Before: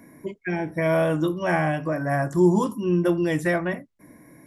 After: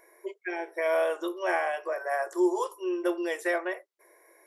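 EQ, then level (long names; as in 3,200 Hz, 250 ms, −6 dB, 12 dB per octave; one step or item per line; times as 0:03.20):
linear-phase brick-wall high-pass 340 Hz
−3.5 dB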